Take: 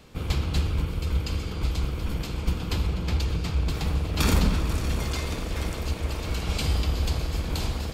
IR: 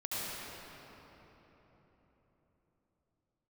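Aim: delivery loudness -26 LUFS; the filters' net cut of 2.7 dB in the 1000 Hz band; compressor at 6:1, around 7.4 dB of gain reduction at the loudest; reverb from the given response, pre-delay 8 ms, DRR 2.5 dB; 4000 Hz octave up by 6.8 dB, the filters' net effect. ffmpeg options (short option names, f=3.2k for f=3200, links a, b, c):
-filter_complex "[0:a]equalizer=f=1k:t=o:g=-4,equalizer=f=4k:t=o:g=8.5,acompressor=threshold=-24dB:ratio=6,asplit=2[a][b];[1:a]atrim=start_sample=2205,adelay=8[c];[b][c]afir=irnorm=-1:irlink=0,volume=-8dB[d];[a][d]amix=inputs=2:normalize=0,volume=2dB"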